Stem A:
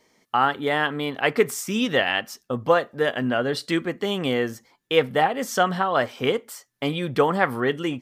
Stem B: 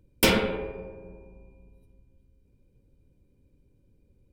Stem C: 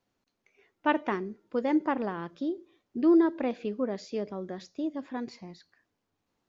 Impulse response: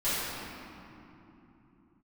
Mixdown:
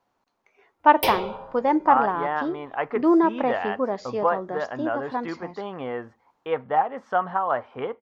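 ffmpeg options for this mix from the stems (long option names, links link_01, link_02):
-filter_complex "[0:a]lowpass=2000,equalizer=frequency=81:width_type=o:width=0.37:gain=13,adelay=1550,volume=-12.5dB[link_01];[1:a]highshelf=frequency=3500:gain=7.5,asplit=2[link_02][link_03];[link_03]afreqshift=0.71[link_04];[link_02][link_04]amix=inputs=2:normalize=1,adelay=800,volume=-8.5dB[link_05];[2:a]volume=-0.5dB[link_06];[link_01][link_05][link_06]amix=inputs=3:normalize=0,equalizer=frequency=920:width=0.9:gain=14.5"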